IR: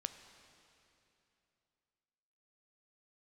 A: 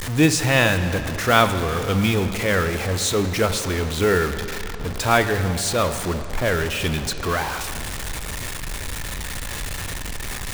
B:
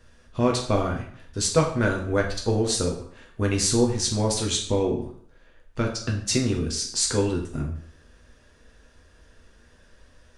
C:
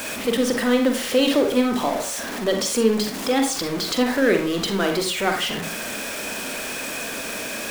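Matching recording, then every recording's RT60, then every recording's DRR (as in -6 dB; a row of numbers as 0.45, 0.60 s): A; 2.9, 0.60, 0.45 s; 8.5, -0.5, 3.5 dB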